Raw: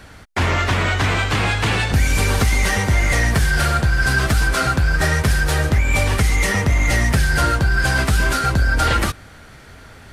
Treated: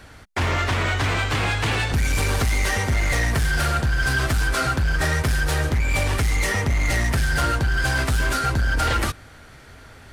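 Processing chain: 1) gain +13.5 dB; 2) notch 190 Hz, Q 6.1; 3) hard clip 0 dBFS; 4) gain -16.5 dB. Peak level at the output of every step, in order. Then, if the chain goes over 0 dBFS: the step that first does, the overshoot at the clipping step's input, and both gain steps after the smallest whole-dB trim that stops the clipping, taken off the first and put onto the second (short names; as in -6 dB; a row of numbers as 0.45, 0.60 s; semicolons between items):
+7.0, +7.5, 0.0, -16.5 dBFS; step 1, 7.5 dB; step 1 +5.5 dB, step 4 -8.5 dB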